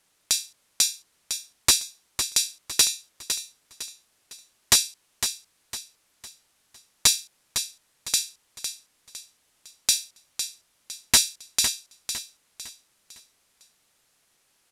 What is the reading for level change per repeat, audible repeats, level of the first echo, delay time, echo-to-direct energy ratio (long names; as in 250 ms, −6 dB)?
−8.5 dB, 4, −8.5 dB, 506 ms, −8.0 dB